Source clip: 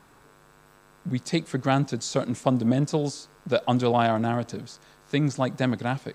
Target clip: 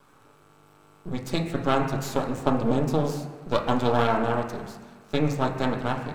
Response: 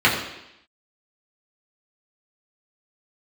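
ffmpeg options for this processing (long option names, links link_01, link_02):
-filter_complex "[0:a]bandreject=frequency=50:width_type=h:width=6,bandreject=frequency=100:width_type=h:width=6,aeval=exprs='max(val(0),0)':channel_layout=same,asplit=2[link_01][link_02];[1:a]atrim=start_sample=2205,asetrate=26460,aresample=44100[link_03];[link_02][link_03]afir=irnorm=-1:irlink=0,volume=-25dB[link_04];[link_01][link_04]amix=inputs=2:normalize=0"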